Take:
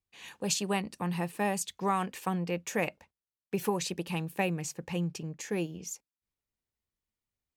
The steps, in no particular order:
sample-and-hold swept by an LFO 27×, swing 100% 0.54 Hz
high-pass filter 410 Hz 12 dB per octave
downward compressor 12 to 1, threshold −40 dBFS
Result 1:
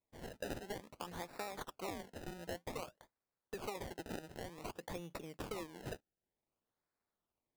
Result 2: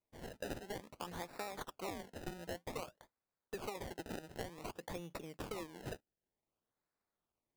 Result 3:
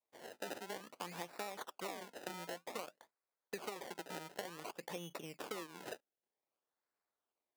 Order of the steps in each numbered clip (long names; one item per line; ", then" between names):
high-pass filter, then downward compressor, then sample-and-hold swept by an LFO
high-pass filter, then sample-and-hold swept by an LFO, then downward compressor
sample-and-hold swept by an LFO, then high-pass filter, then downward compressor